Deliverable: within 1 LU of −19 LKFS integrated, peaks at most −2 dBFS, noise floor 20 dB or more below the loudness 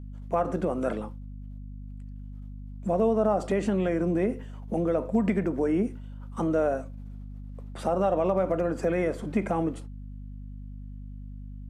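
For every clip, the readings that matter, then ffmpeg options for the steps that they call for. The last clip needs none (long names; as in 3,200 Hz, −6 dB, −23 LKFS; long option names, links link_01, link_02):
mains hum 50 Hz; hum harmonics up to 250 Hz; level of the hum −38 dBFS; integrated loudness −27.5 LKFS; sample peak −13.5 dBFS; target loudness −19.0 LKFS
→ -af "bandreject=frequency=50:width_type=h:width=4,bandreject=frequency=100:width_type=h:width=4,bandreject=frequency=150:width_type=h:width=4,bandreject=frequency=200:width_type=h:width=4,bandreject=frequency=250:width_type=h:width=4"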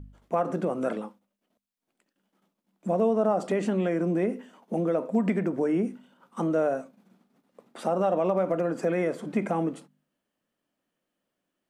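mains hum none found; integrated loudness −27.5 LKFS; sample peak −14.0 dBFS; target loudness −19.0 LKFS
→ -af "volume=8.5dB"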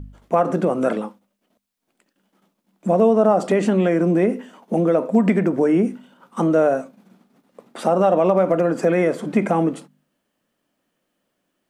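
integrated loudness −19.0 LKFS; sample peak −5.5 dBFS; background noise floor −75 dBFS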